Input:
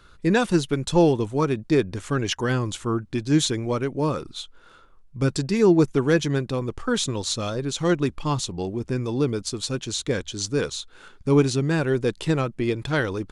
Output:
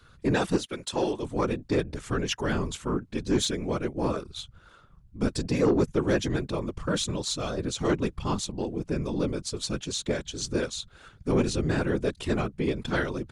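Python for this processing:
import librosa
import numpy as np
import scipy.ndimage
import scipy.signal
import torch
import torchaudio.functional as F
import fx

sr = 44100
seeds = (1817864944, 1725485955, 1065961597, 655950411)

y = fx.highpass(x, sr, hz=660.0, slope=6, at=(0.57, 1.23))
y = fx.whisperise(y, sr, seeds[0])
y = 10.0 ** (-11.5 / 20.0) * np.tanh(y / 10.0 ** (-11.5 / 20.0))
y = y * librosa.db_to_amplitude(-3.5)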